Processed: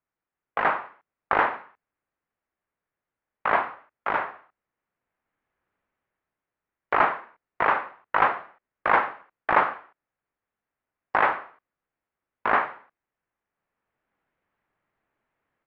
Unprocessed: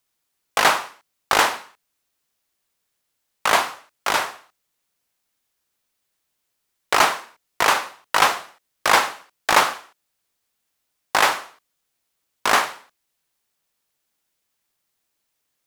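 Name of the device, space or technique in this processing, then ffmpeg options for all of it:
action camera in a waterproof case: -af "lowpass=f=2000:w=0.5412,lowpass=f=2000:w=1.3066,dynaudnorm=f=710:g=3:m=3.76,volume=0.531" -ar 24000 -c:a aac -b:a 96k

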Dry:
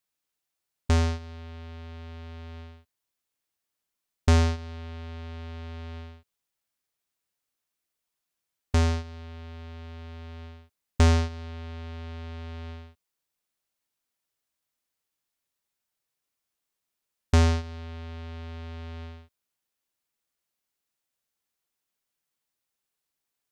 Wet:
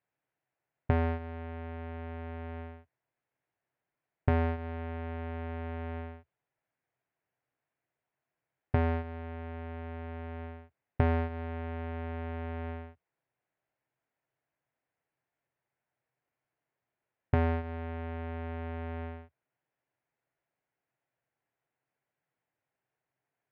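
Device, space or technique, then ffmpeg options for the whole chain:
bass amplifier: -af "acompressor=threshold=0.0398:ratio=4,highpass=60,equalizer=f=74:t=q:w=4:g=-9,equalizer=f=130:t=q:w=4:g=9,equalizer=f=210:t=q:w=4:g=-6,equalizer=f=680:t=q:w=4:g=4,equalizer=f=1200:t=q:w=4:g=-6,lowpass=f=2100:w=0.5412,lowpass=f=2100:w=1.3066,volume=1.78"

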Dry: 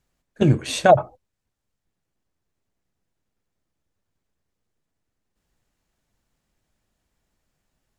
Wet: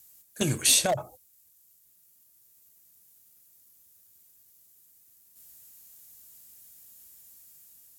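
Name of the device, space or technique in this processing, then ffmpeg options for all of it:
FM broadcast chain: -filter_complex "[0:a]highpass=55,dynaudnorm=f=440:g=5:m=1.41,acrossover=split=800|5400[s0][s1][s2];[s0]acompressor=threshold=0.1:ratio=4[s3];[s1]acompressor=threshold=0.0251:ratio=4[s4];[s2]acompressor=threshold=0.00398:ratio=4[s5];[s3][s4][s5]amix=inputs=3:normalize=0,aemphasis=mode=production:type=75fm,alimiter=limit=0.178:level=0:latency=1:release=309,asoftclip=type=hard:threshold=0.112,lowpass=f=15000:w=0.5412,lowpass=f=15000:w=1.3066,aemphasis=mode=production:type=75fm"

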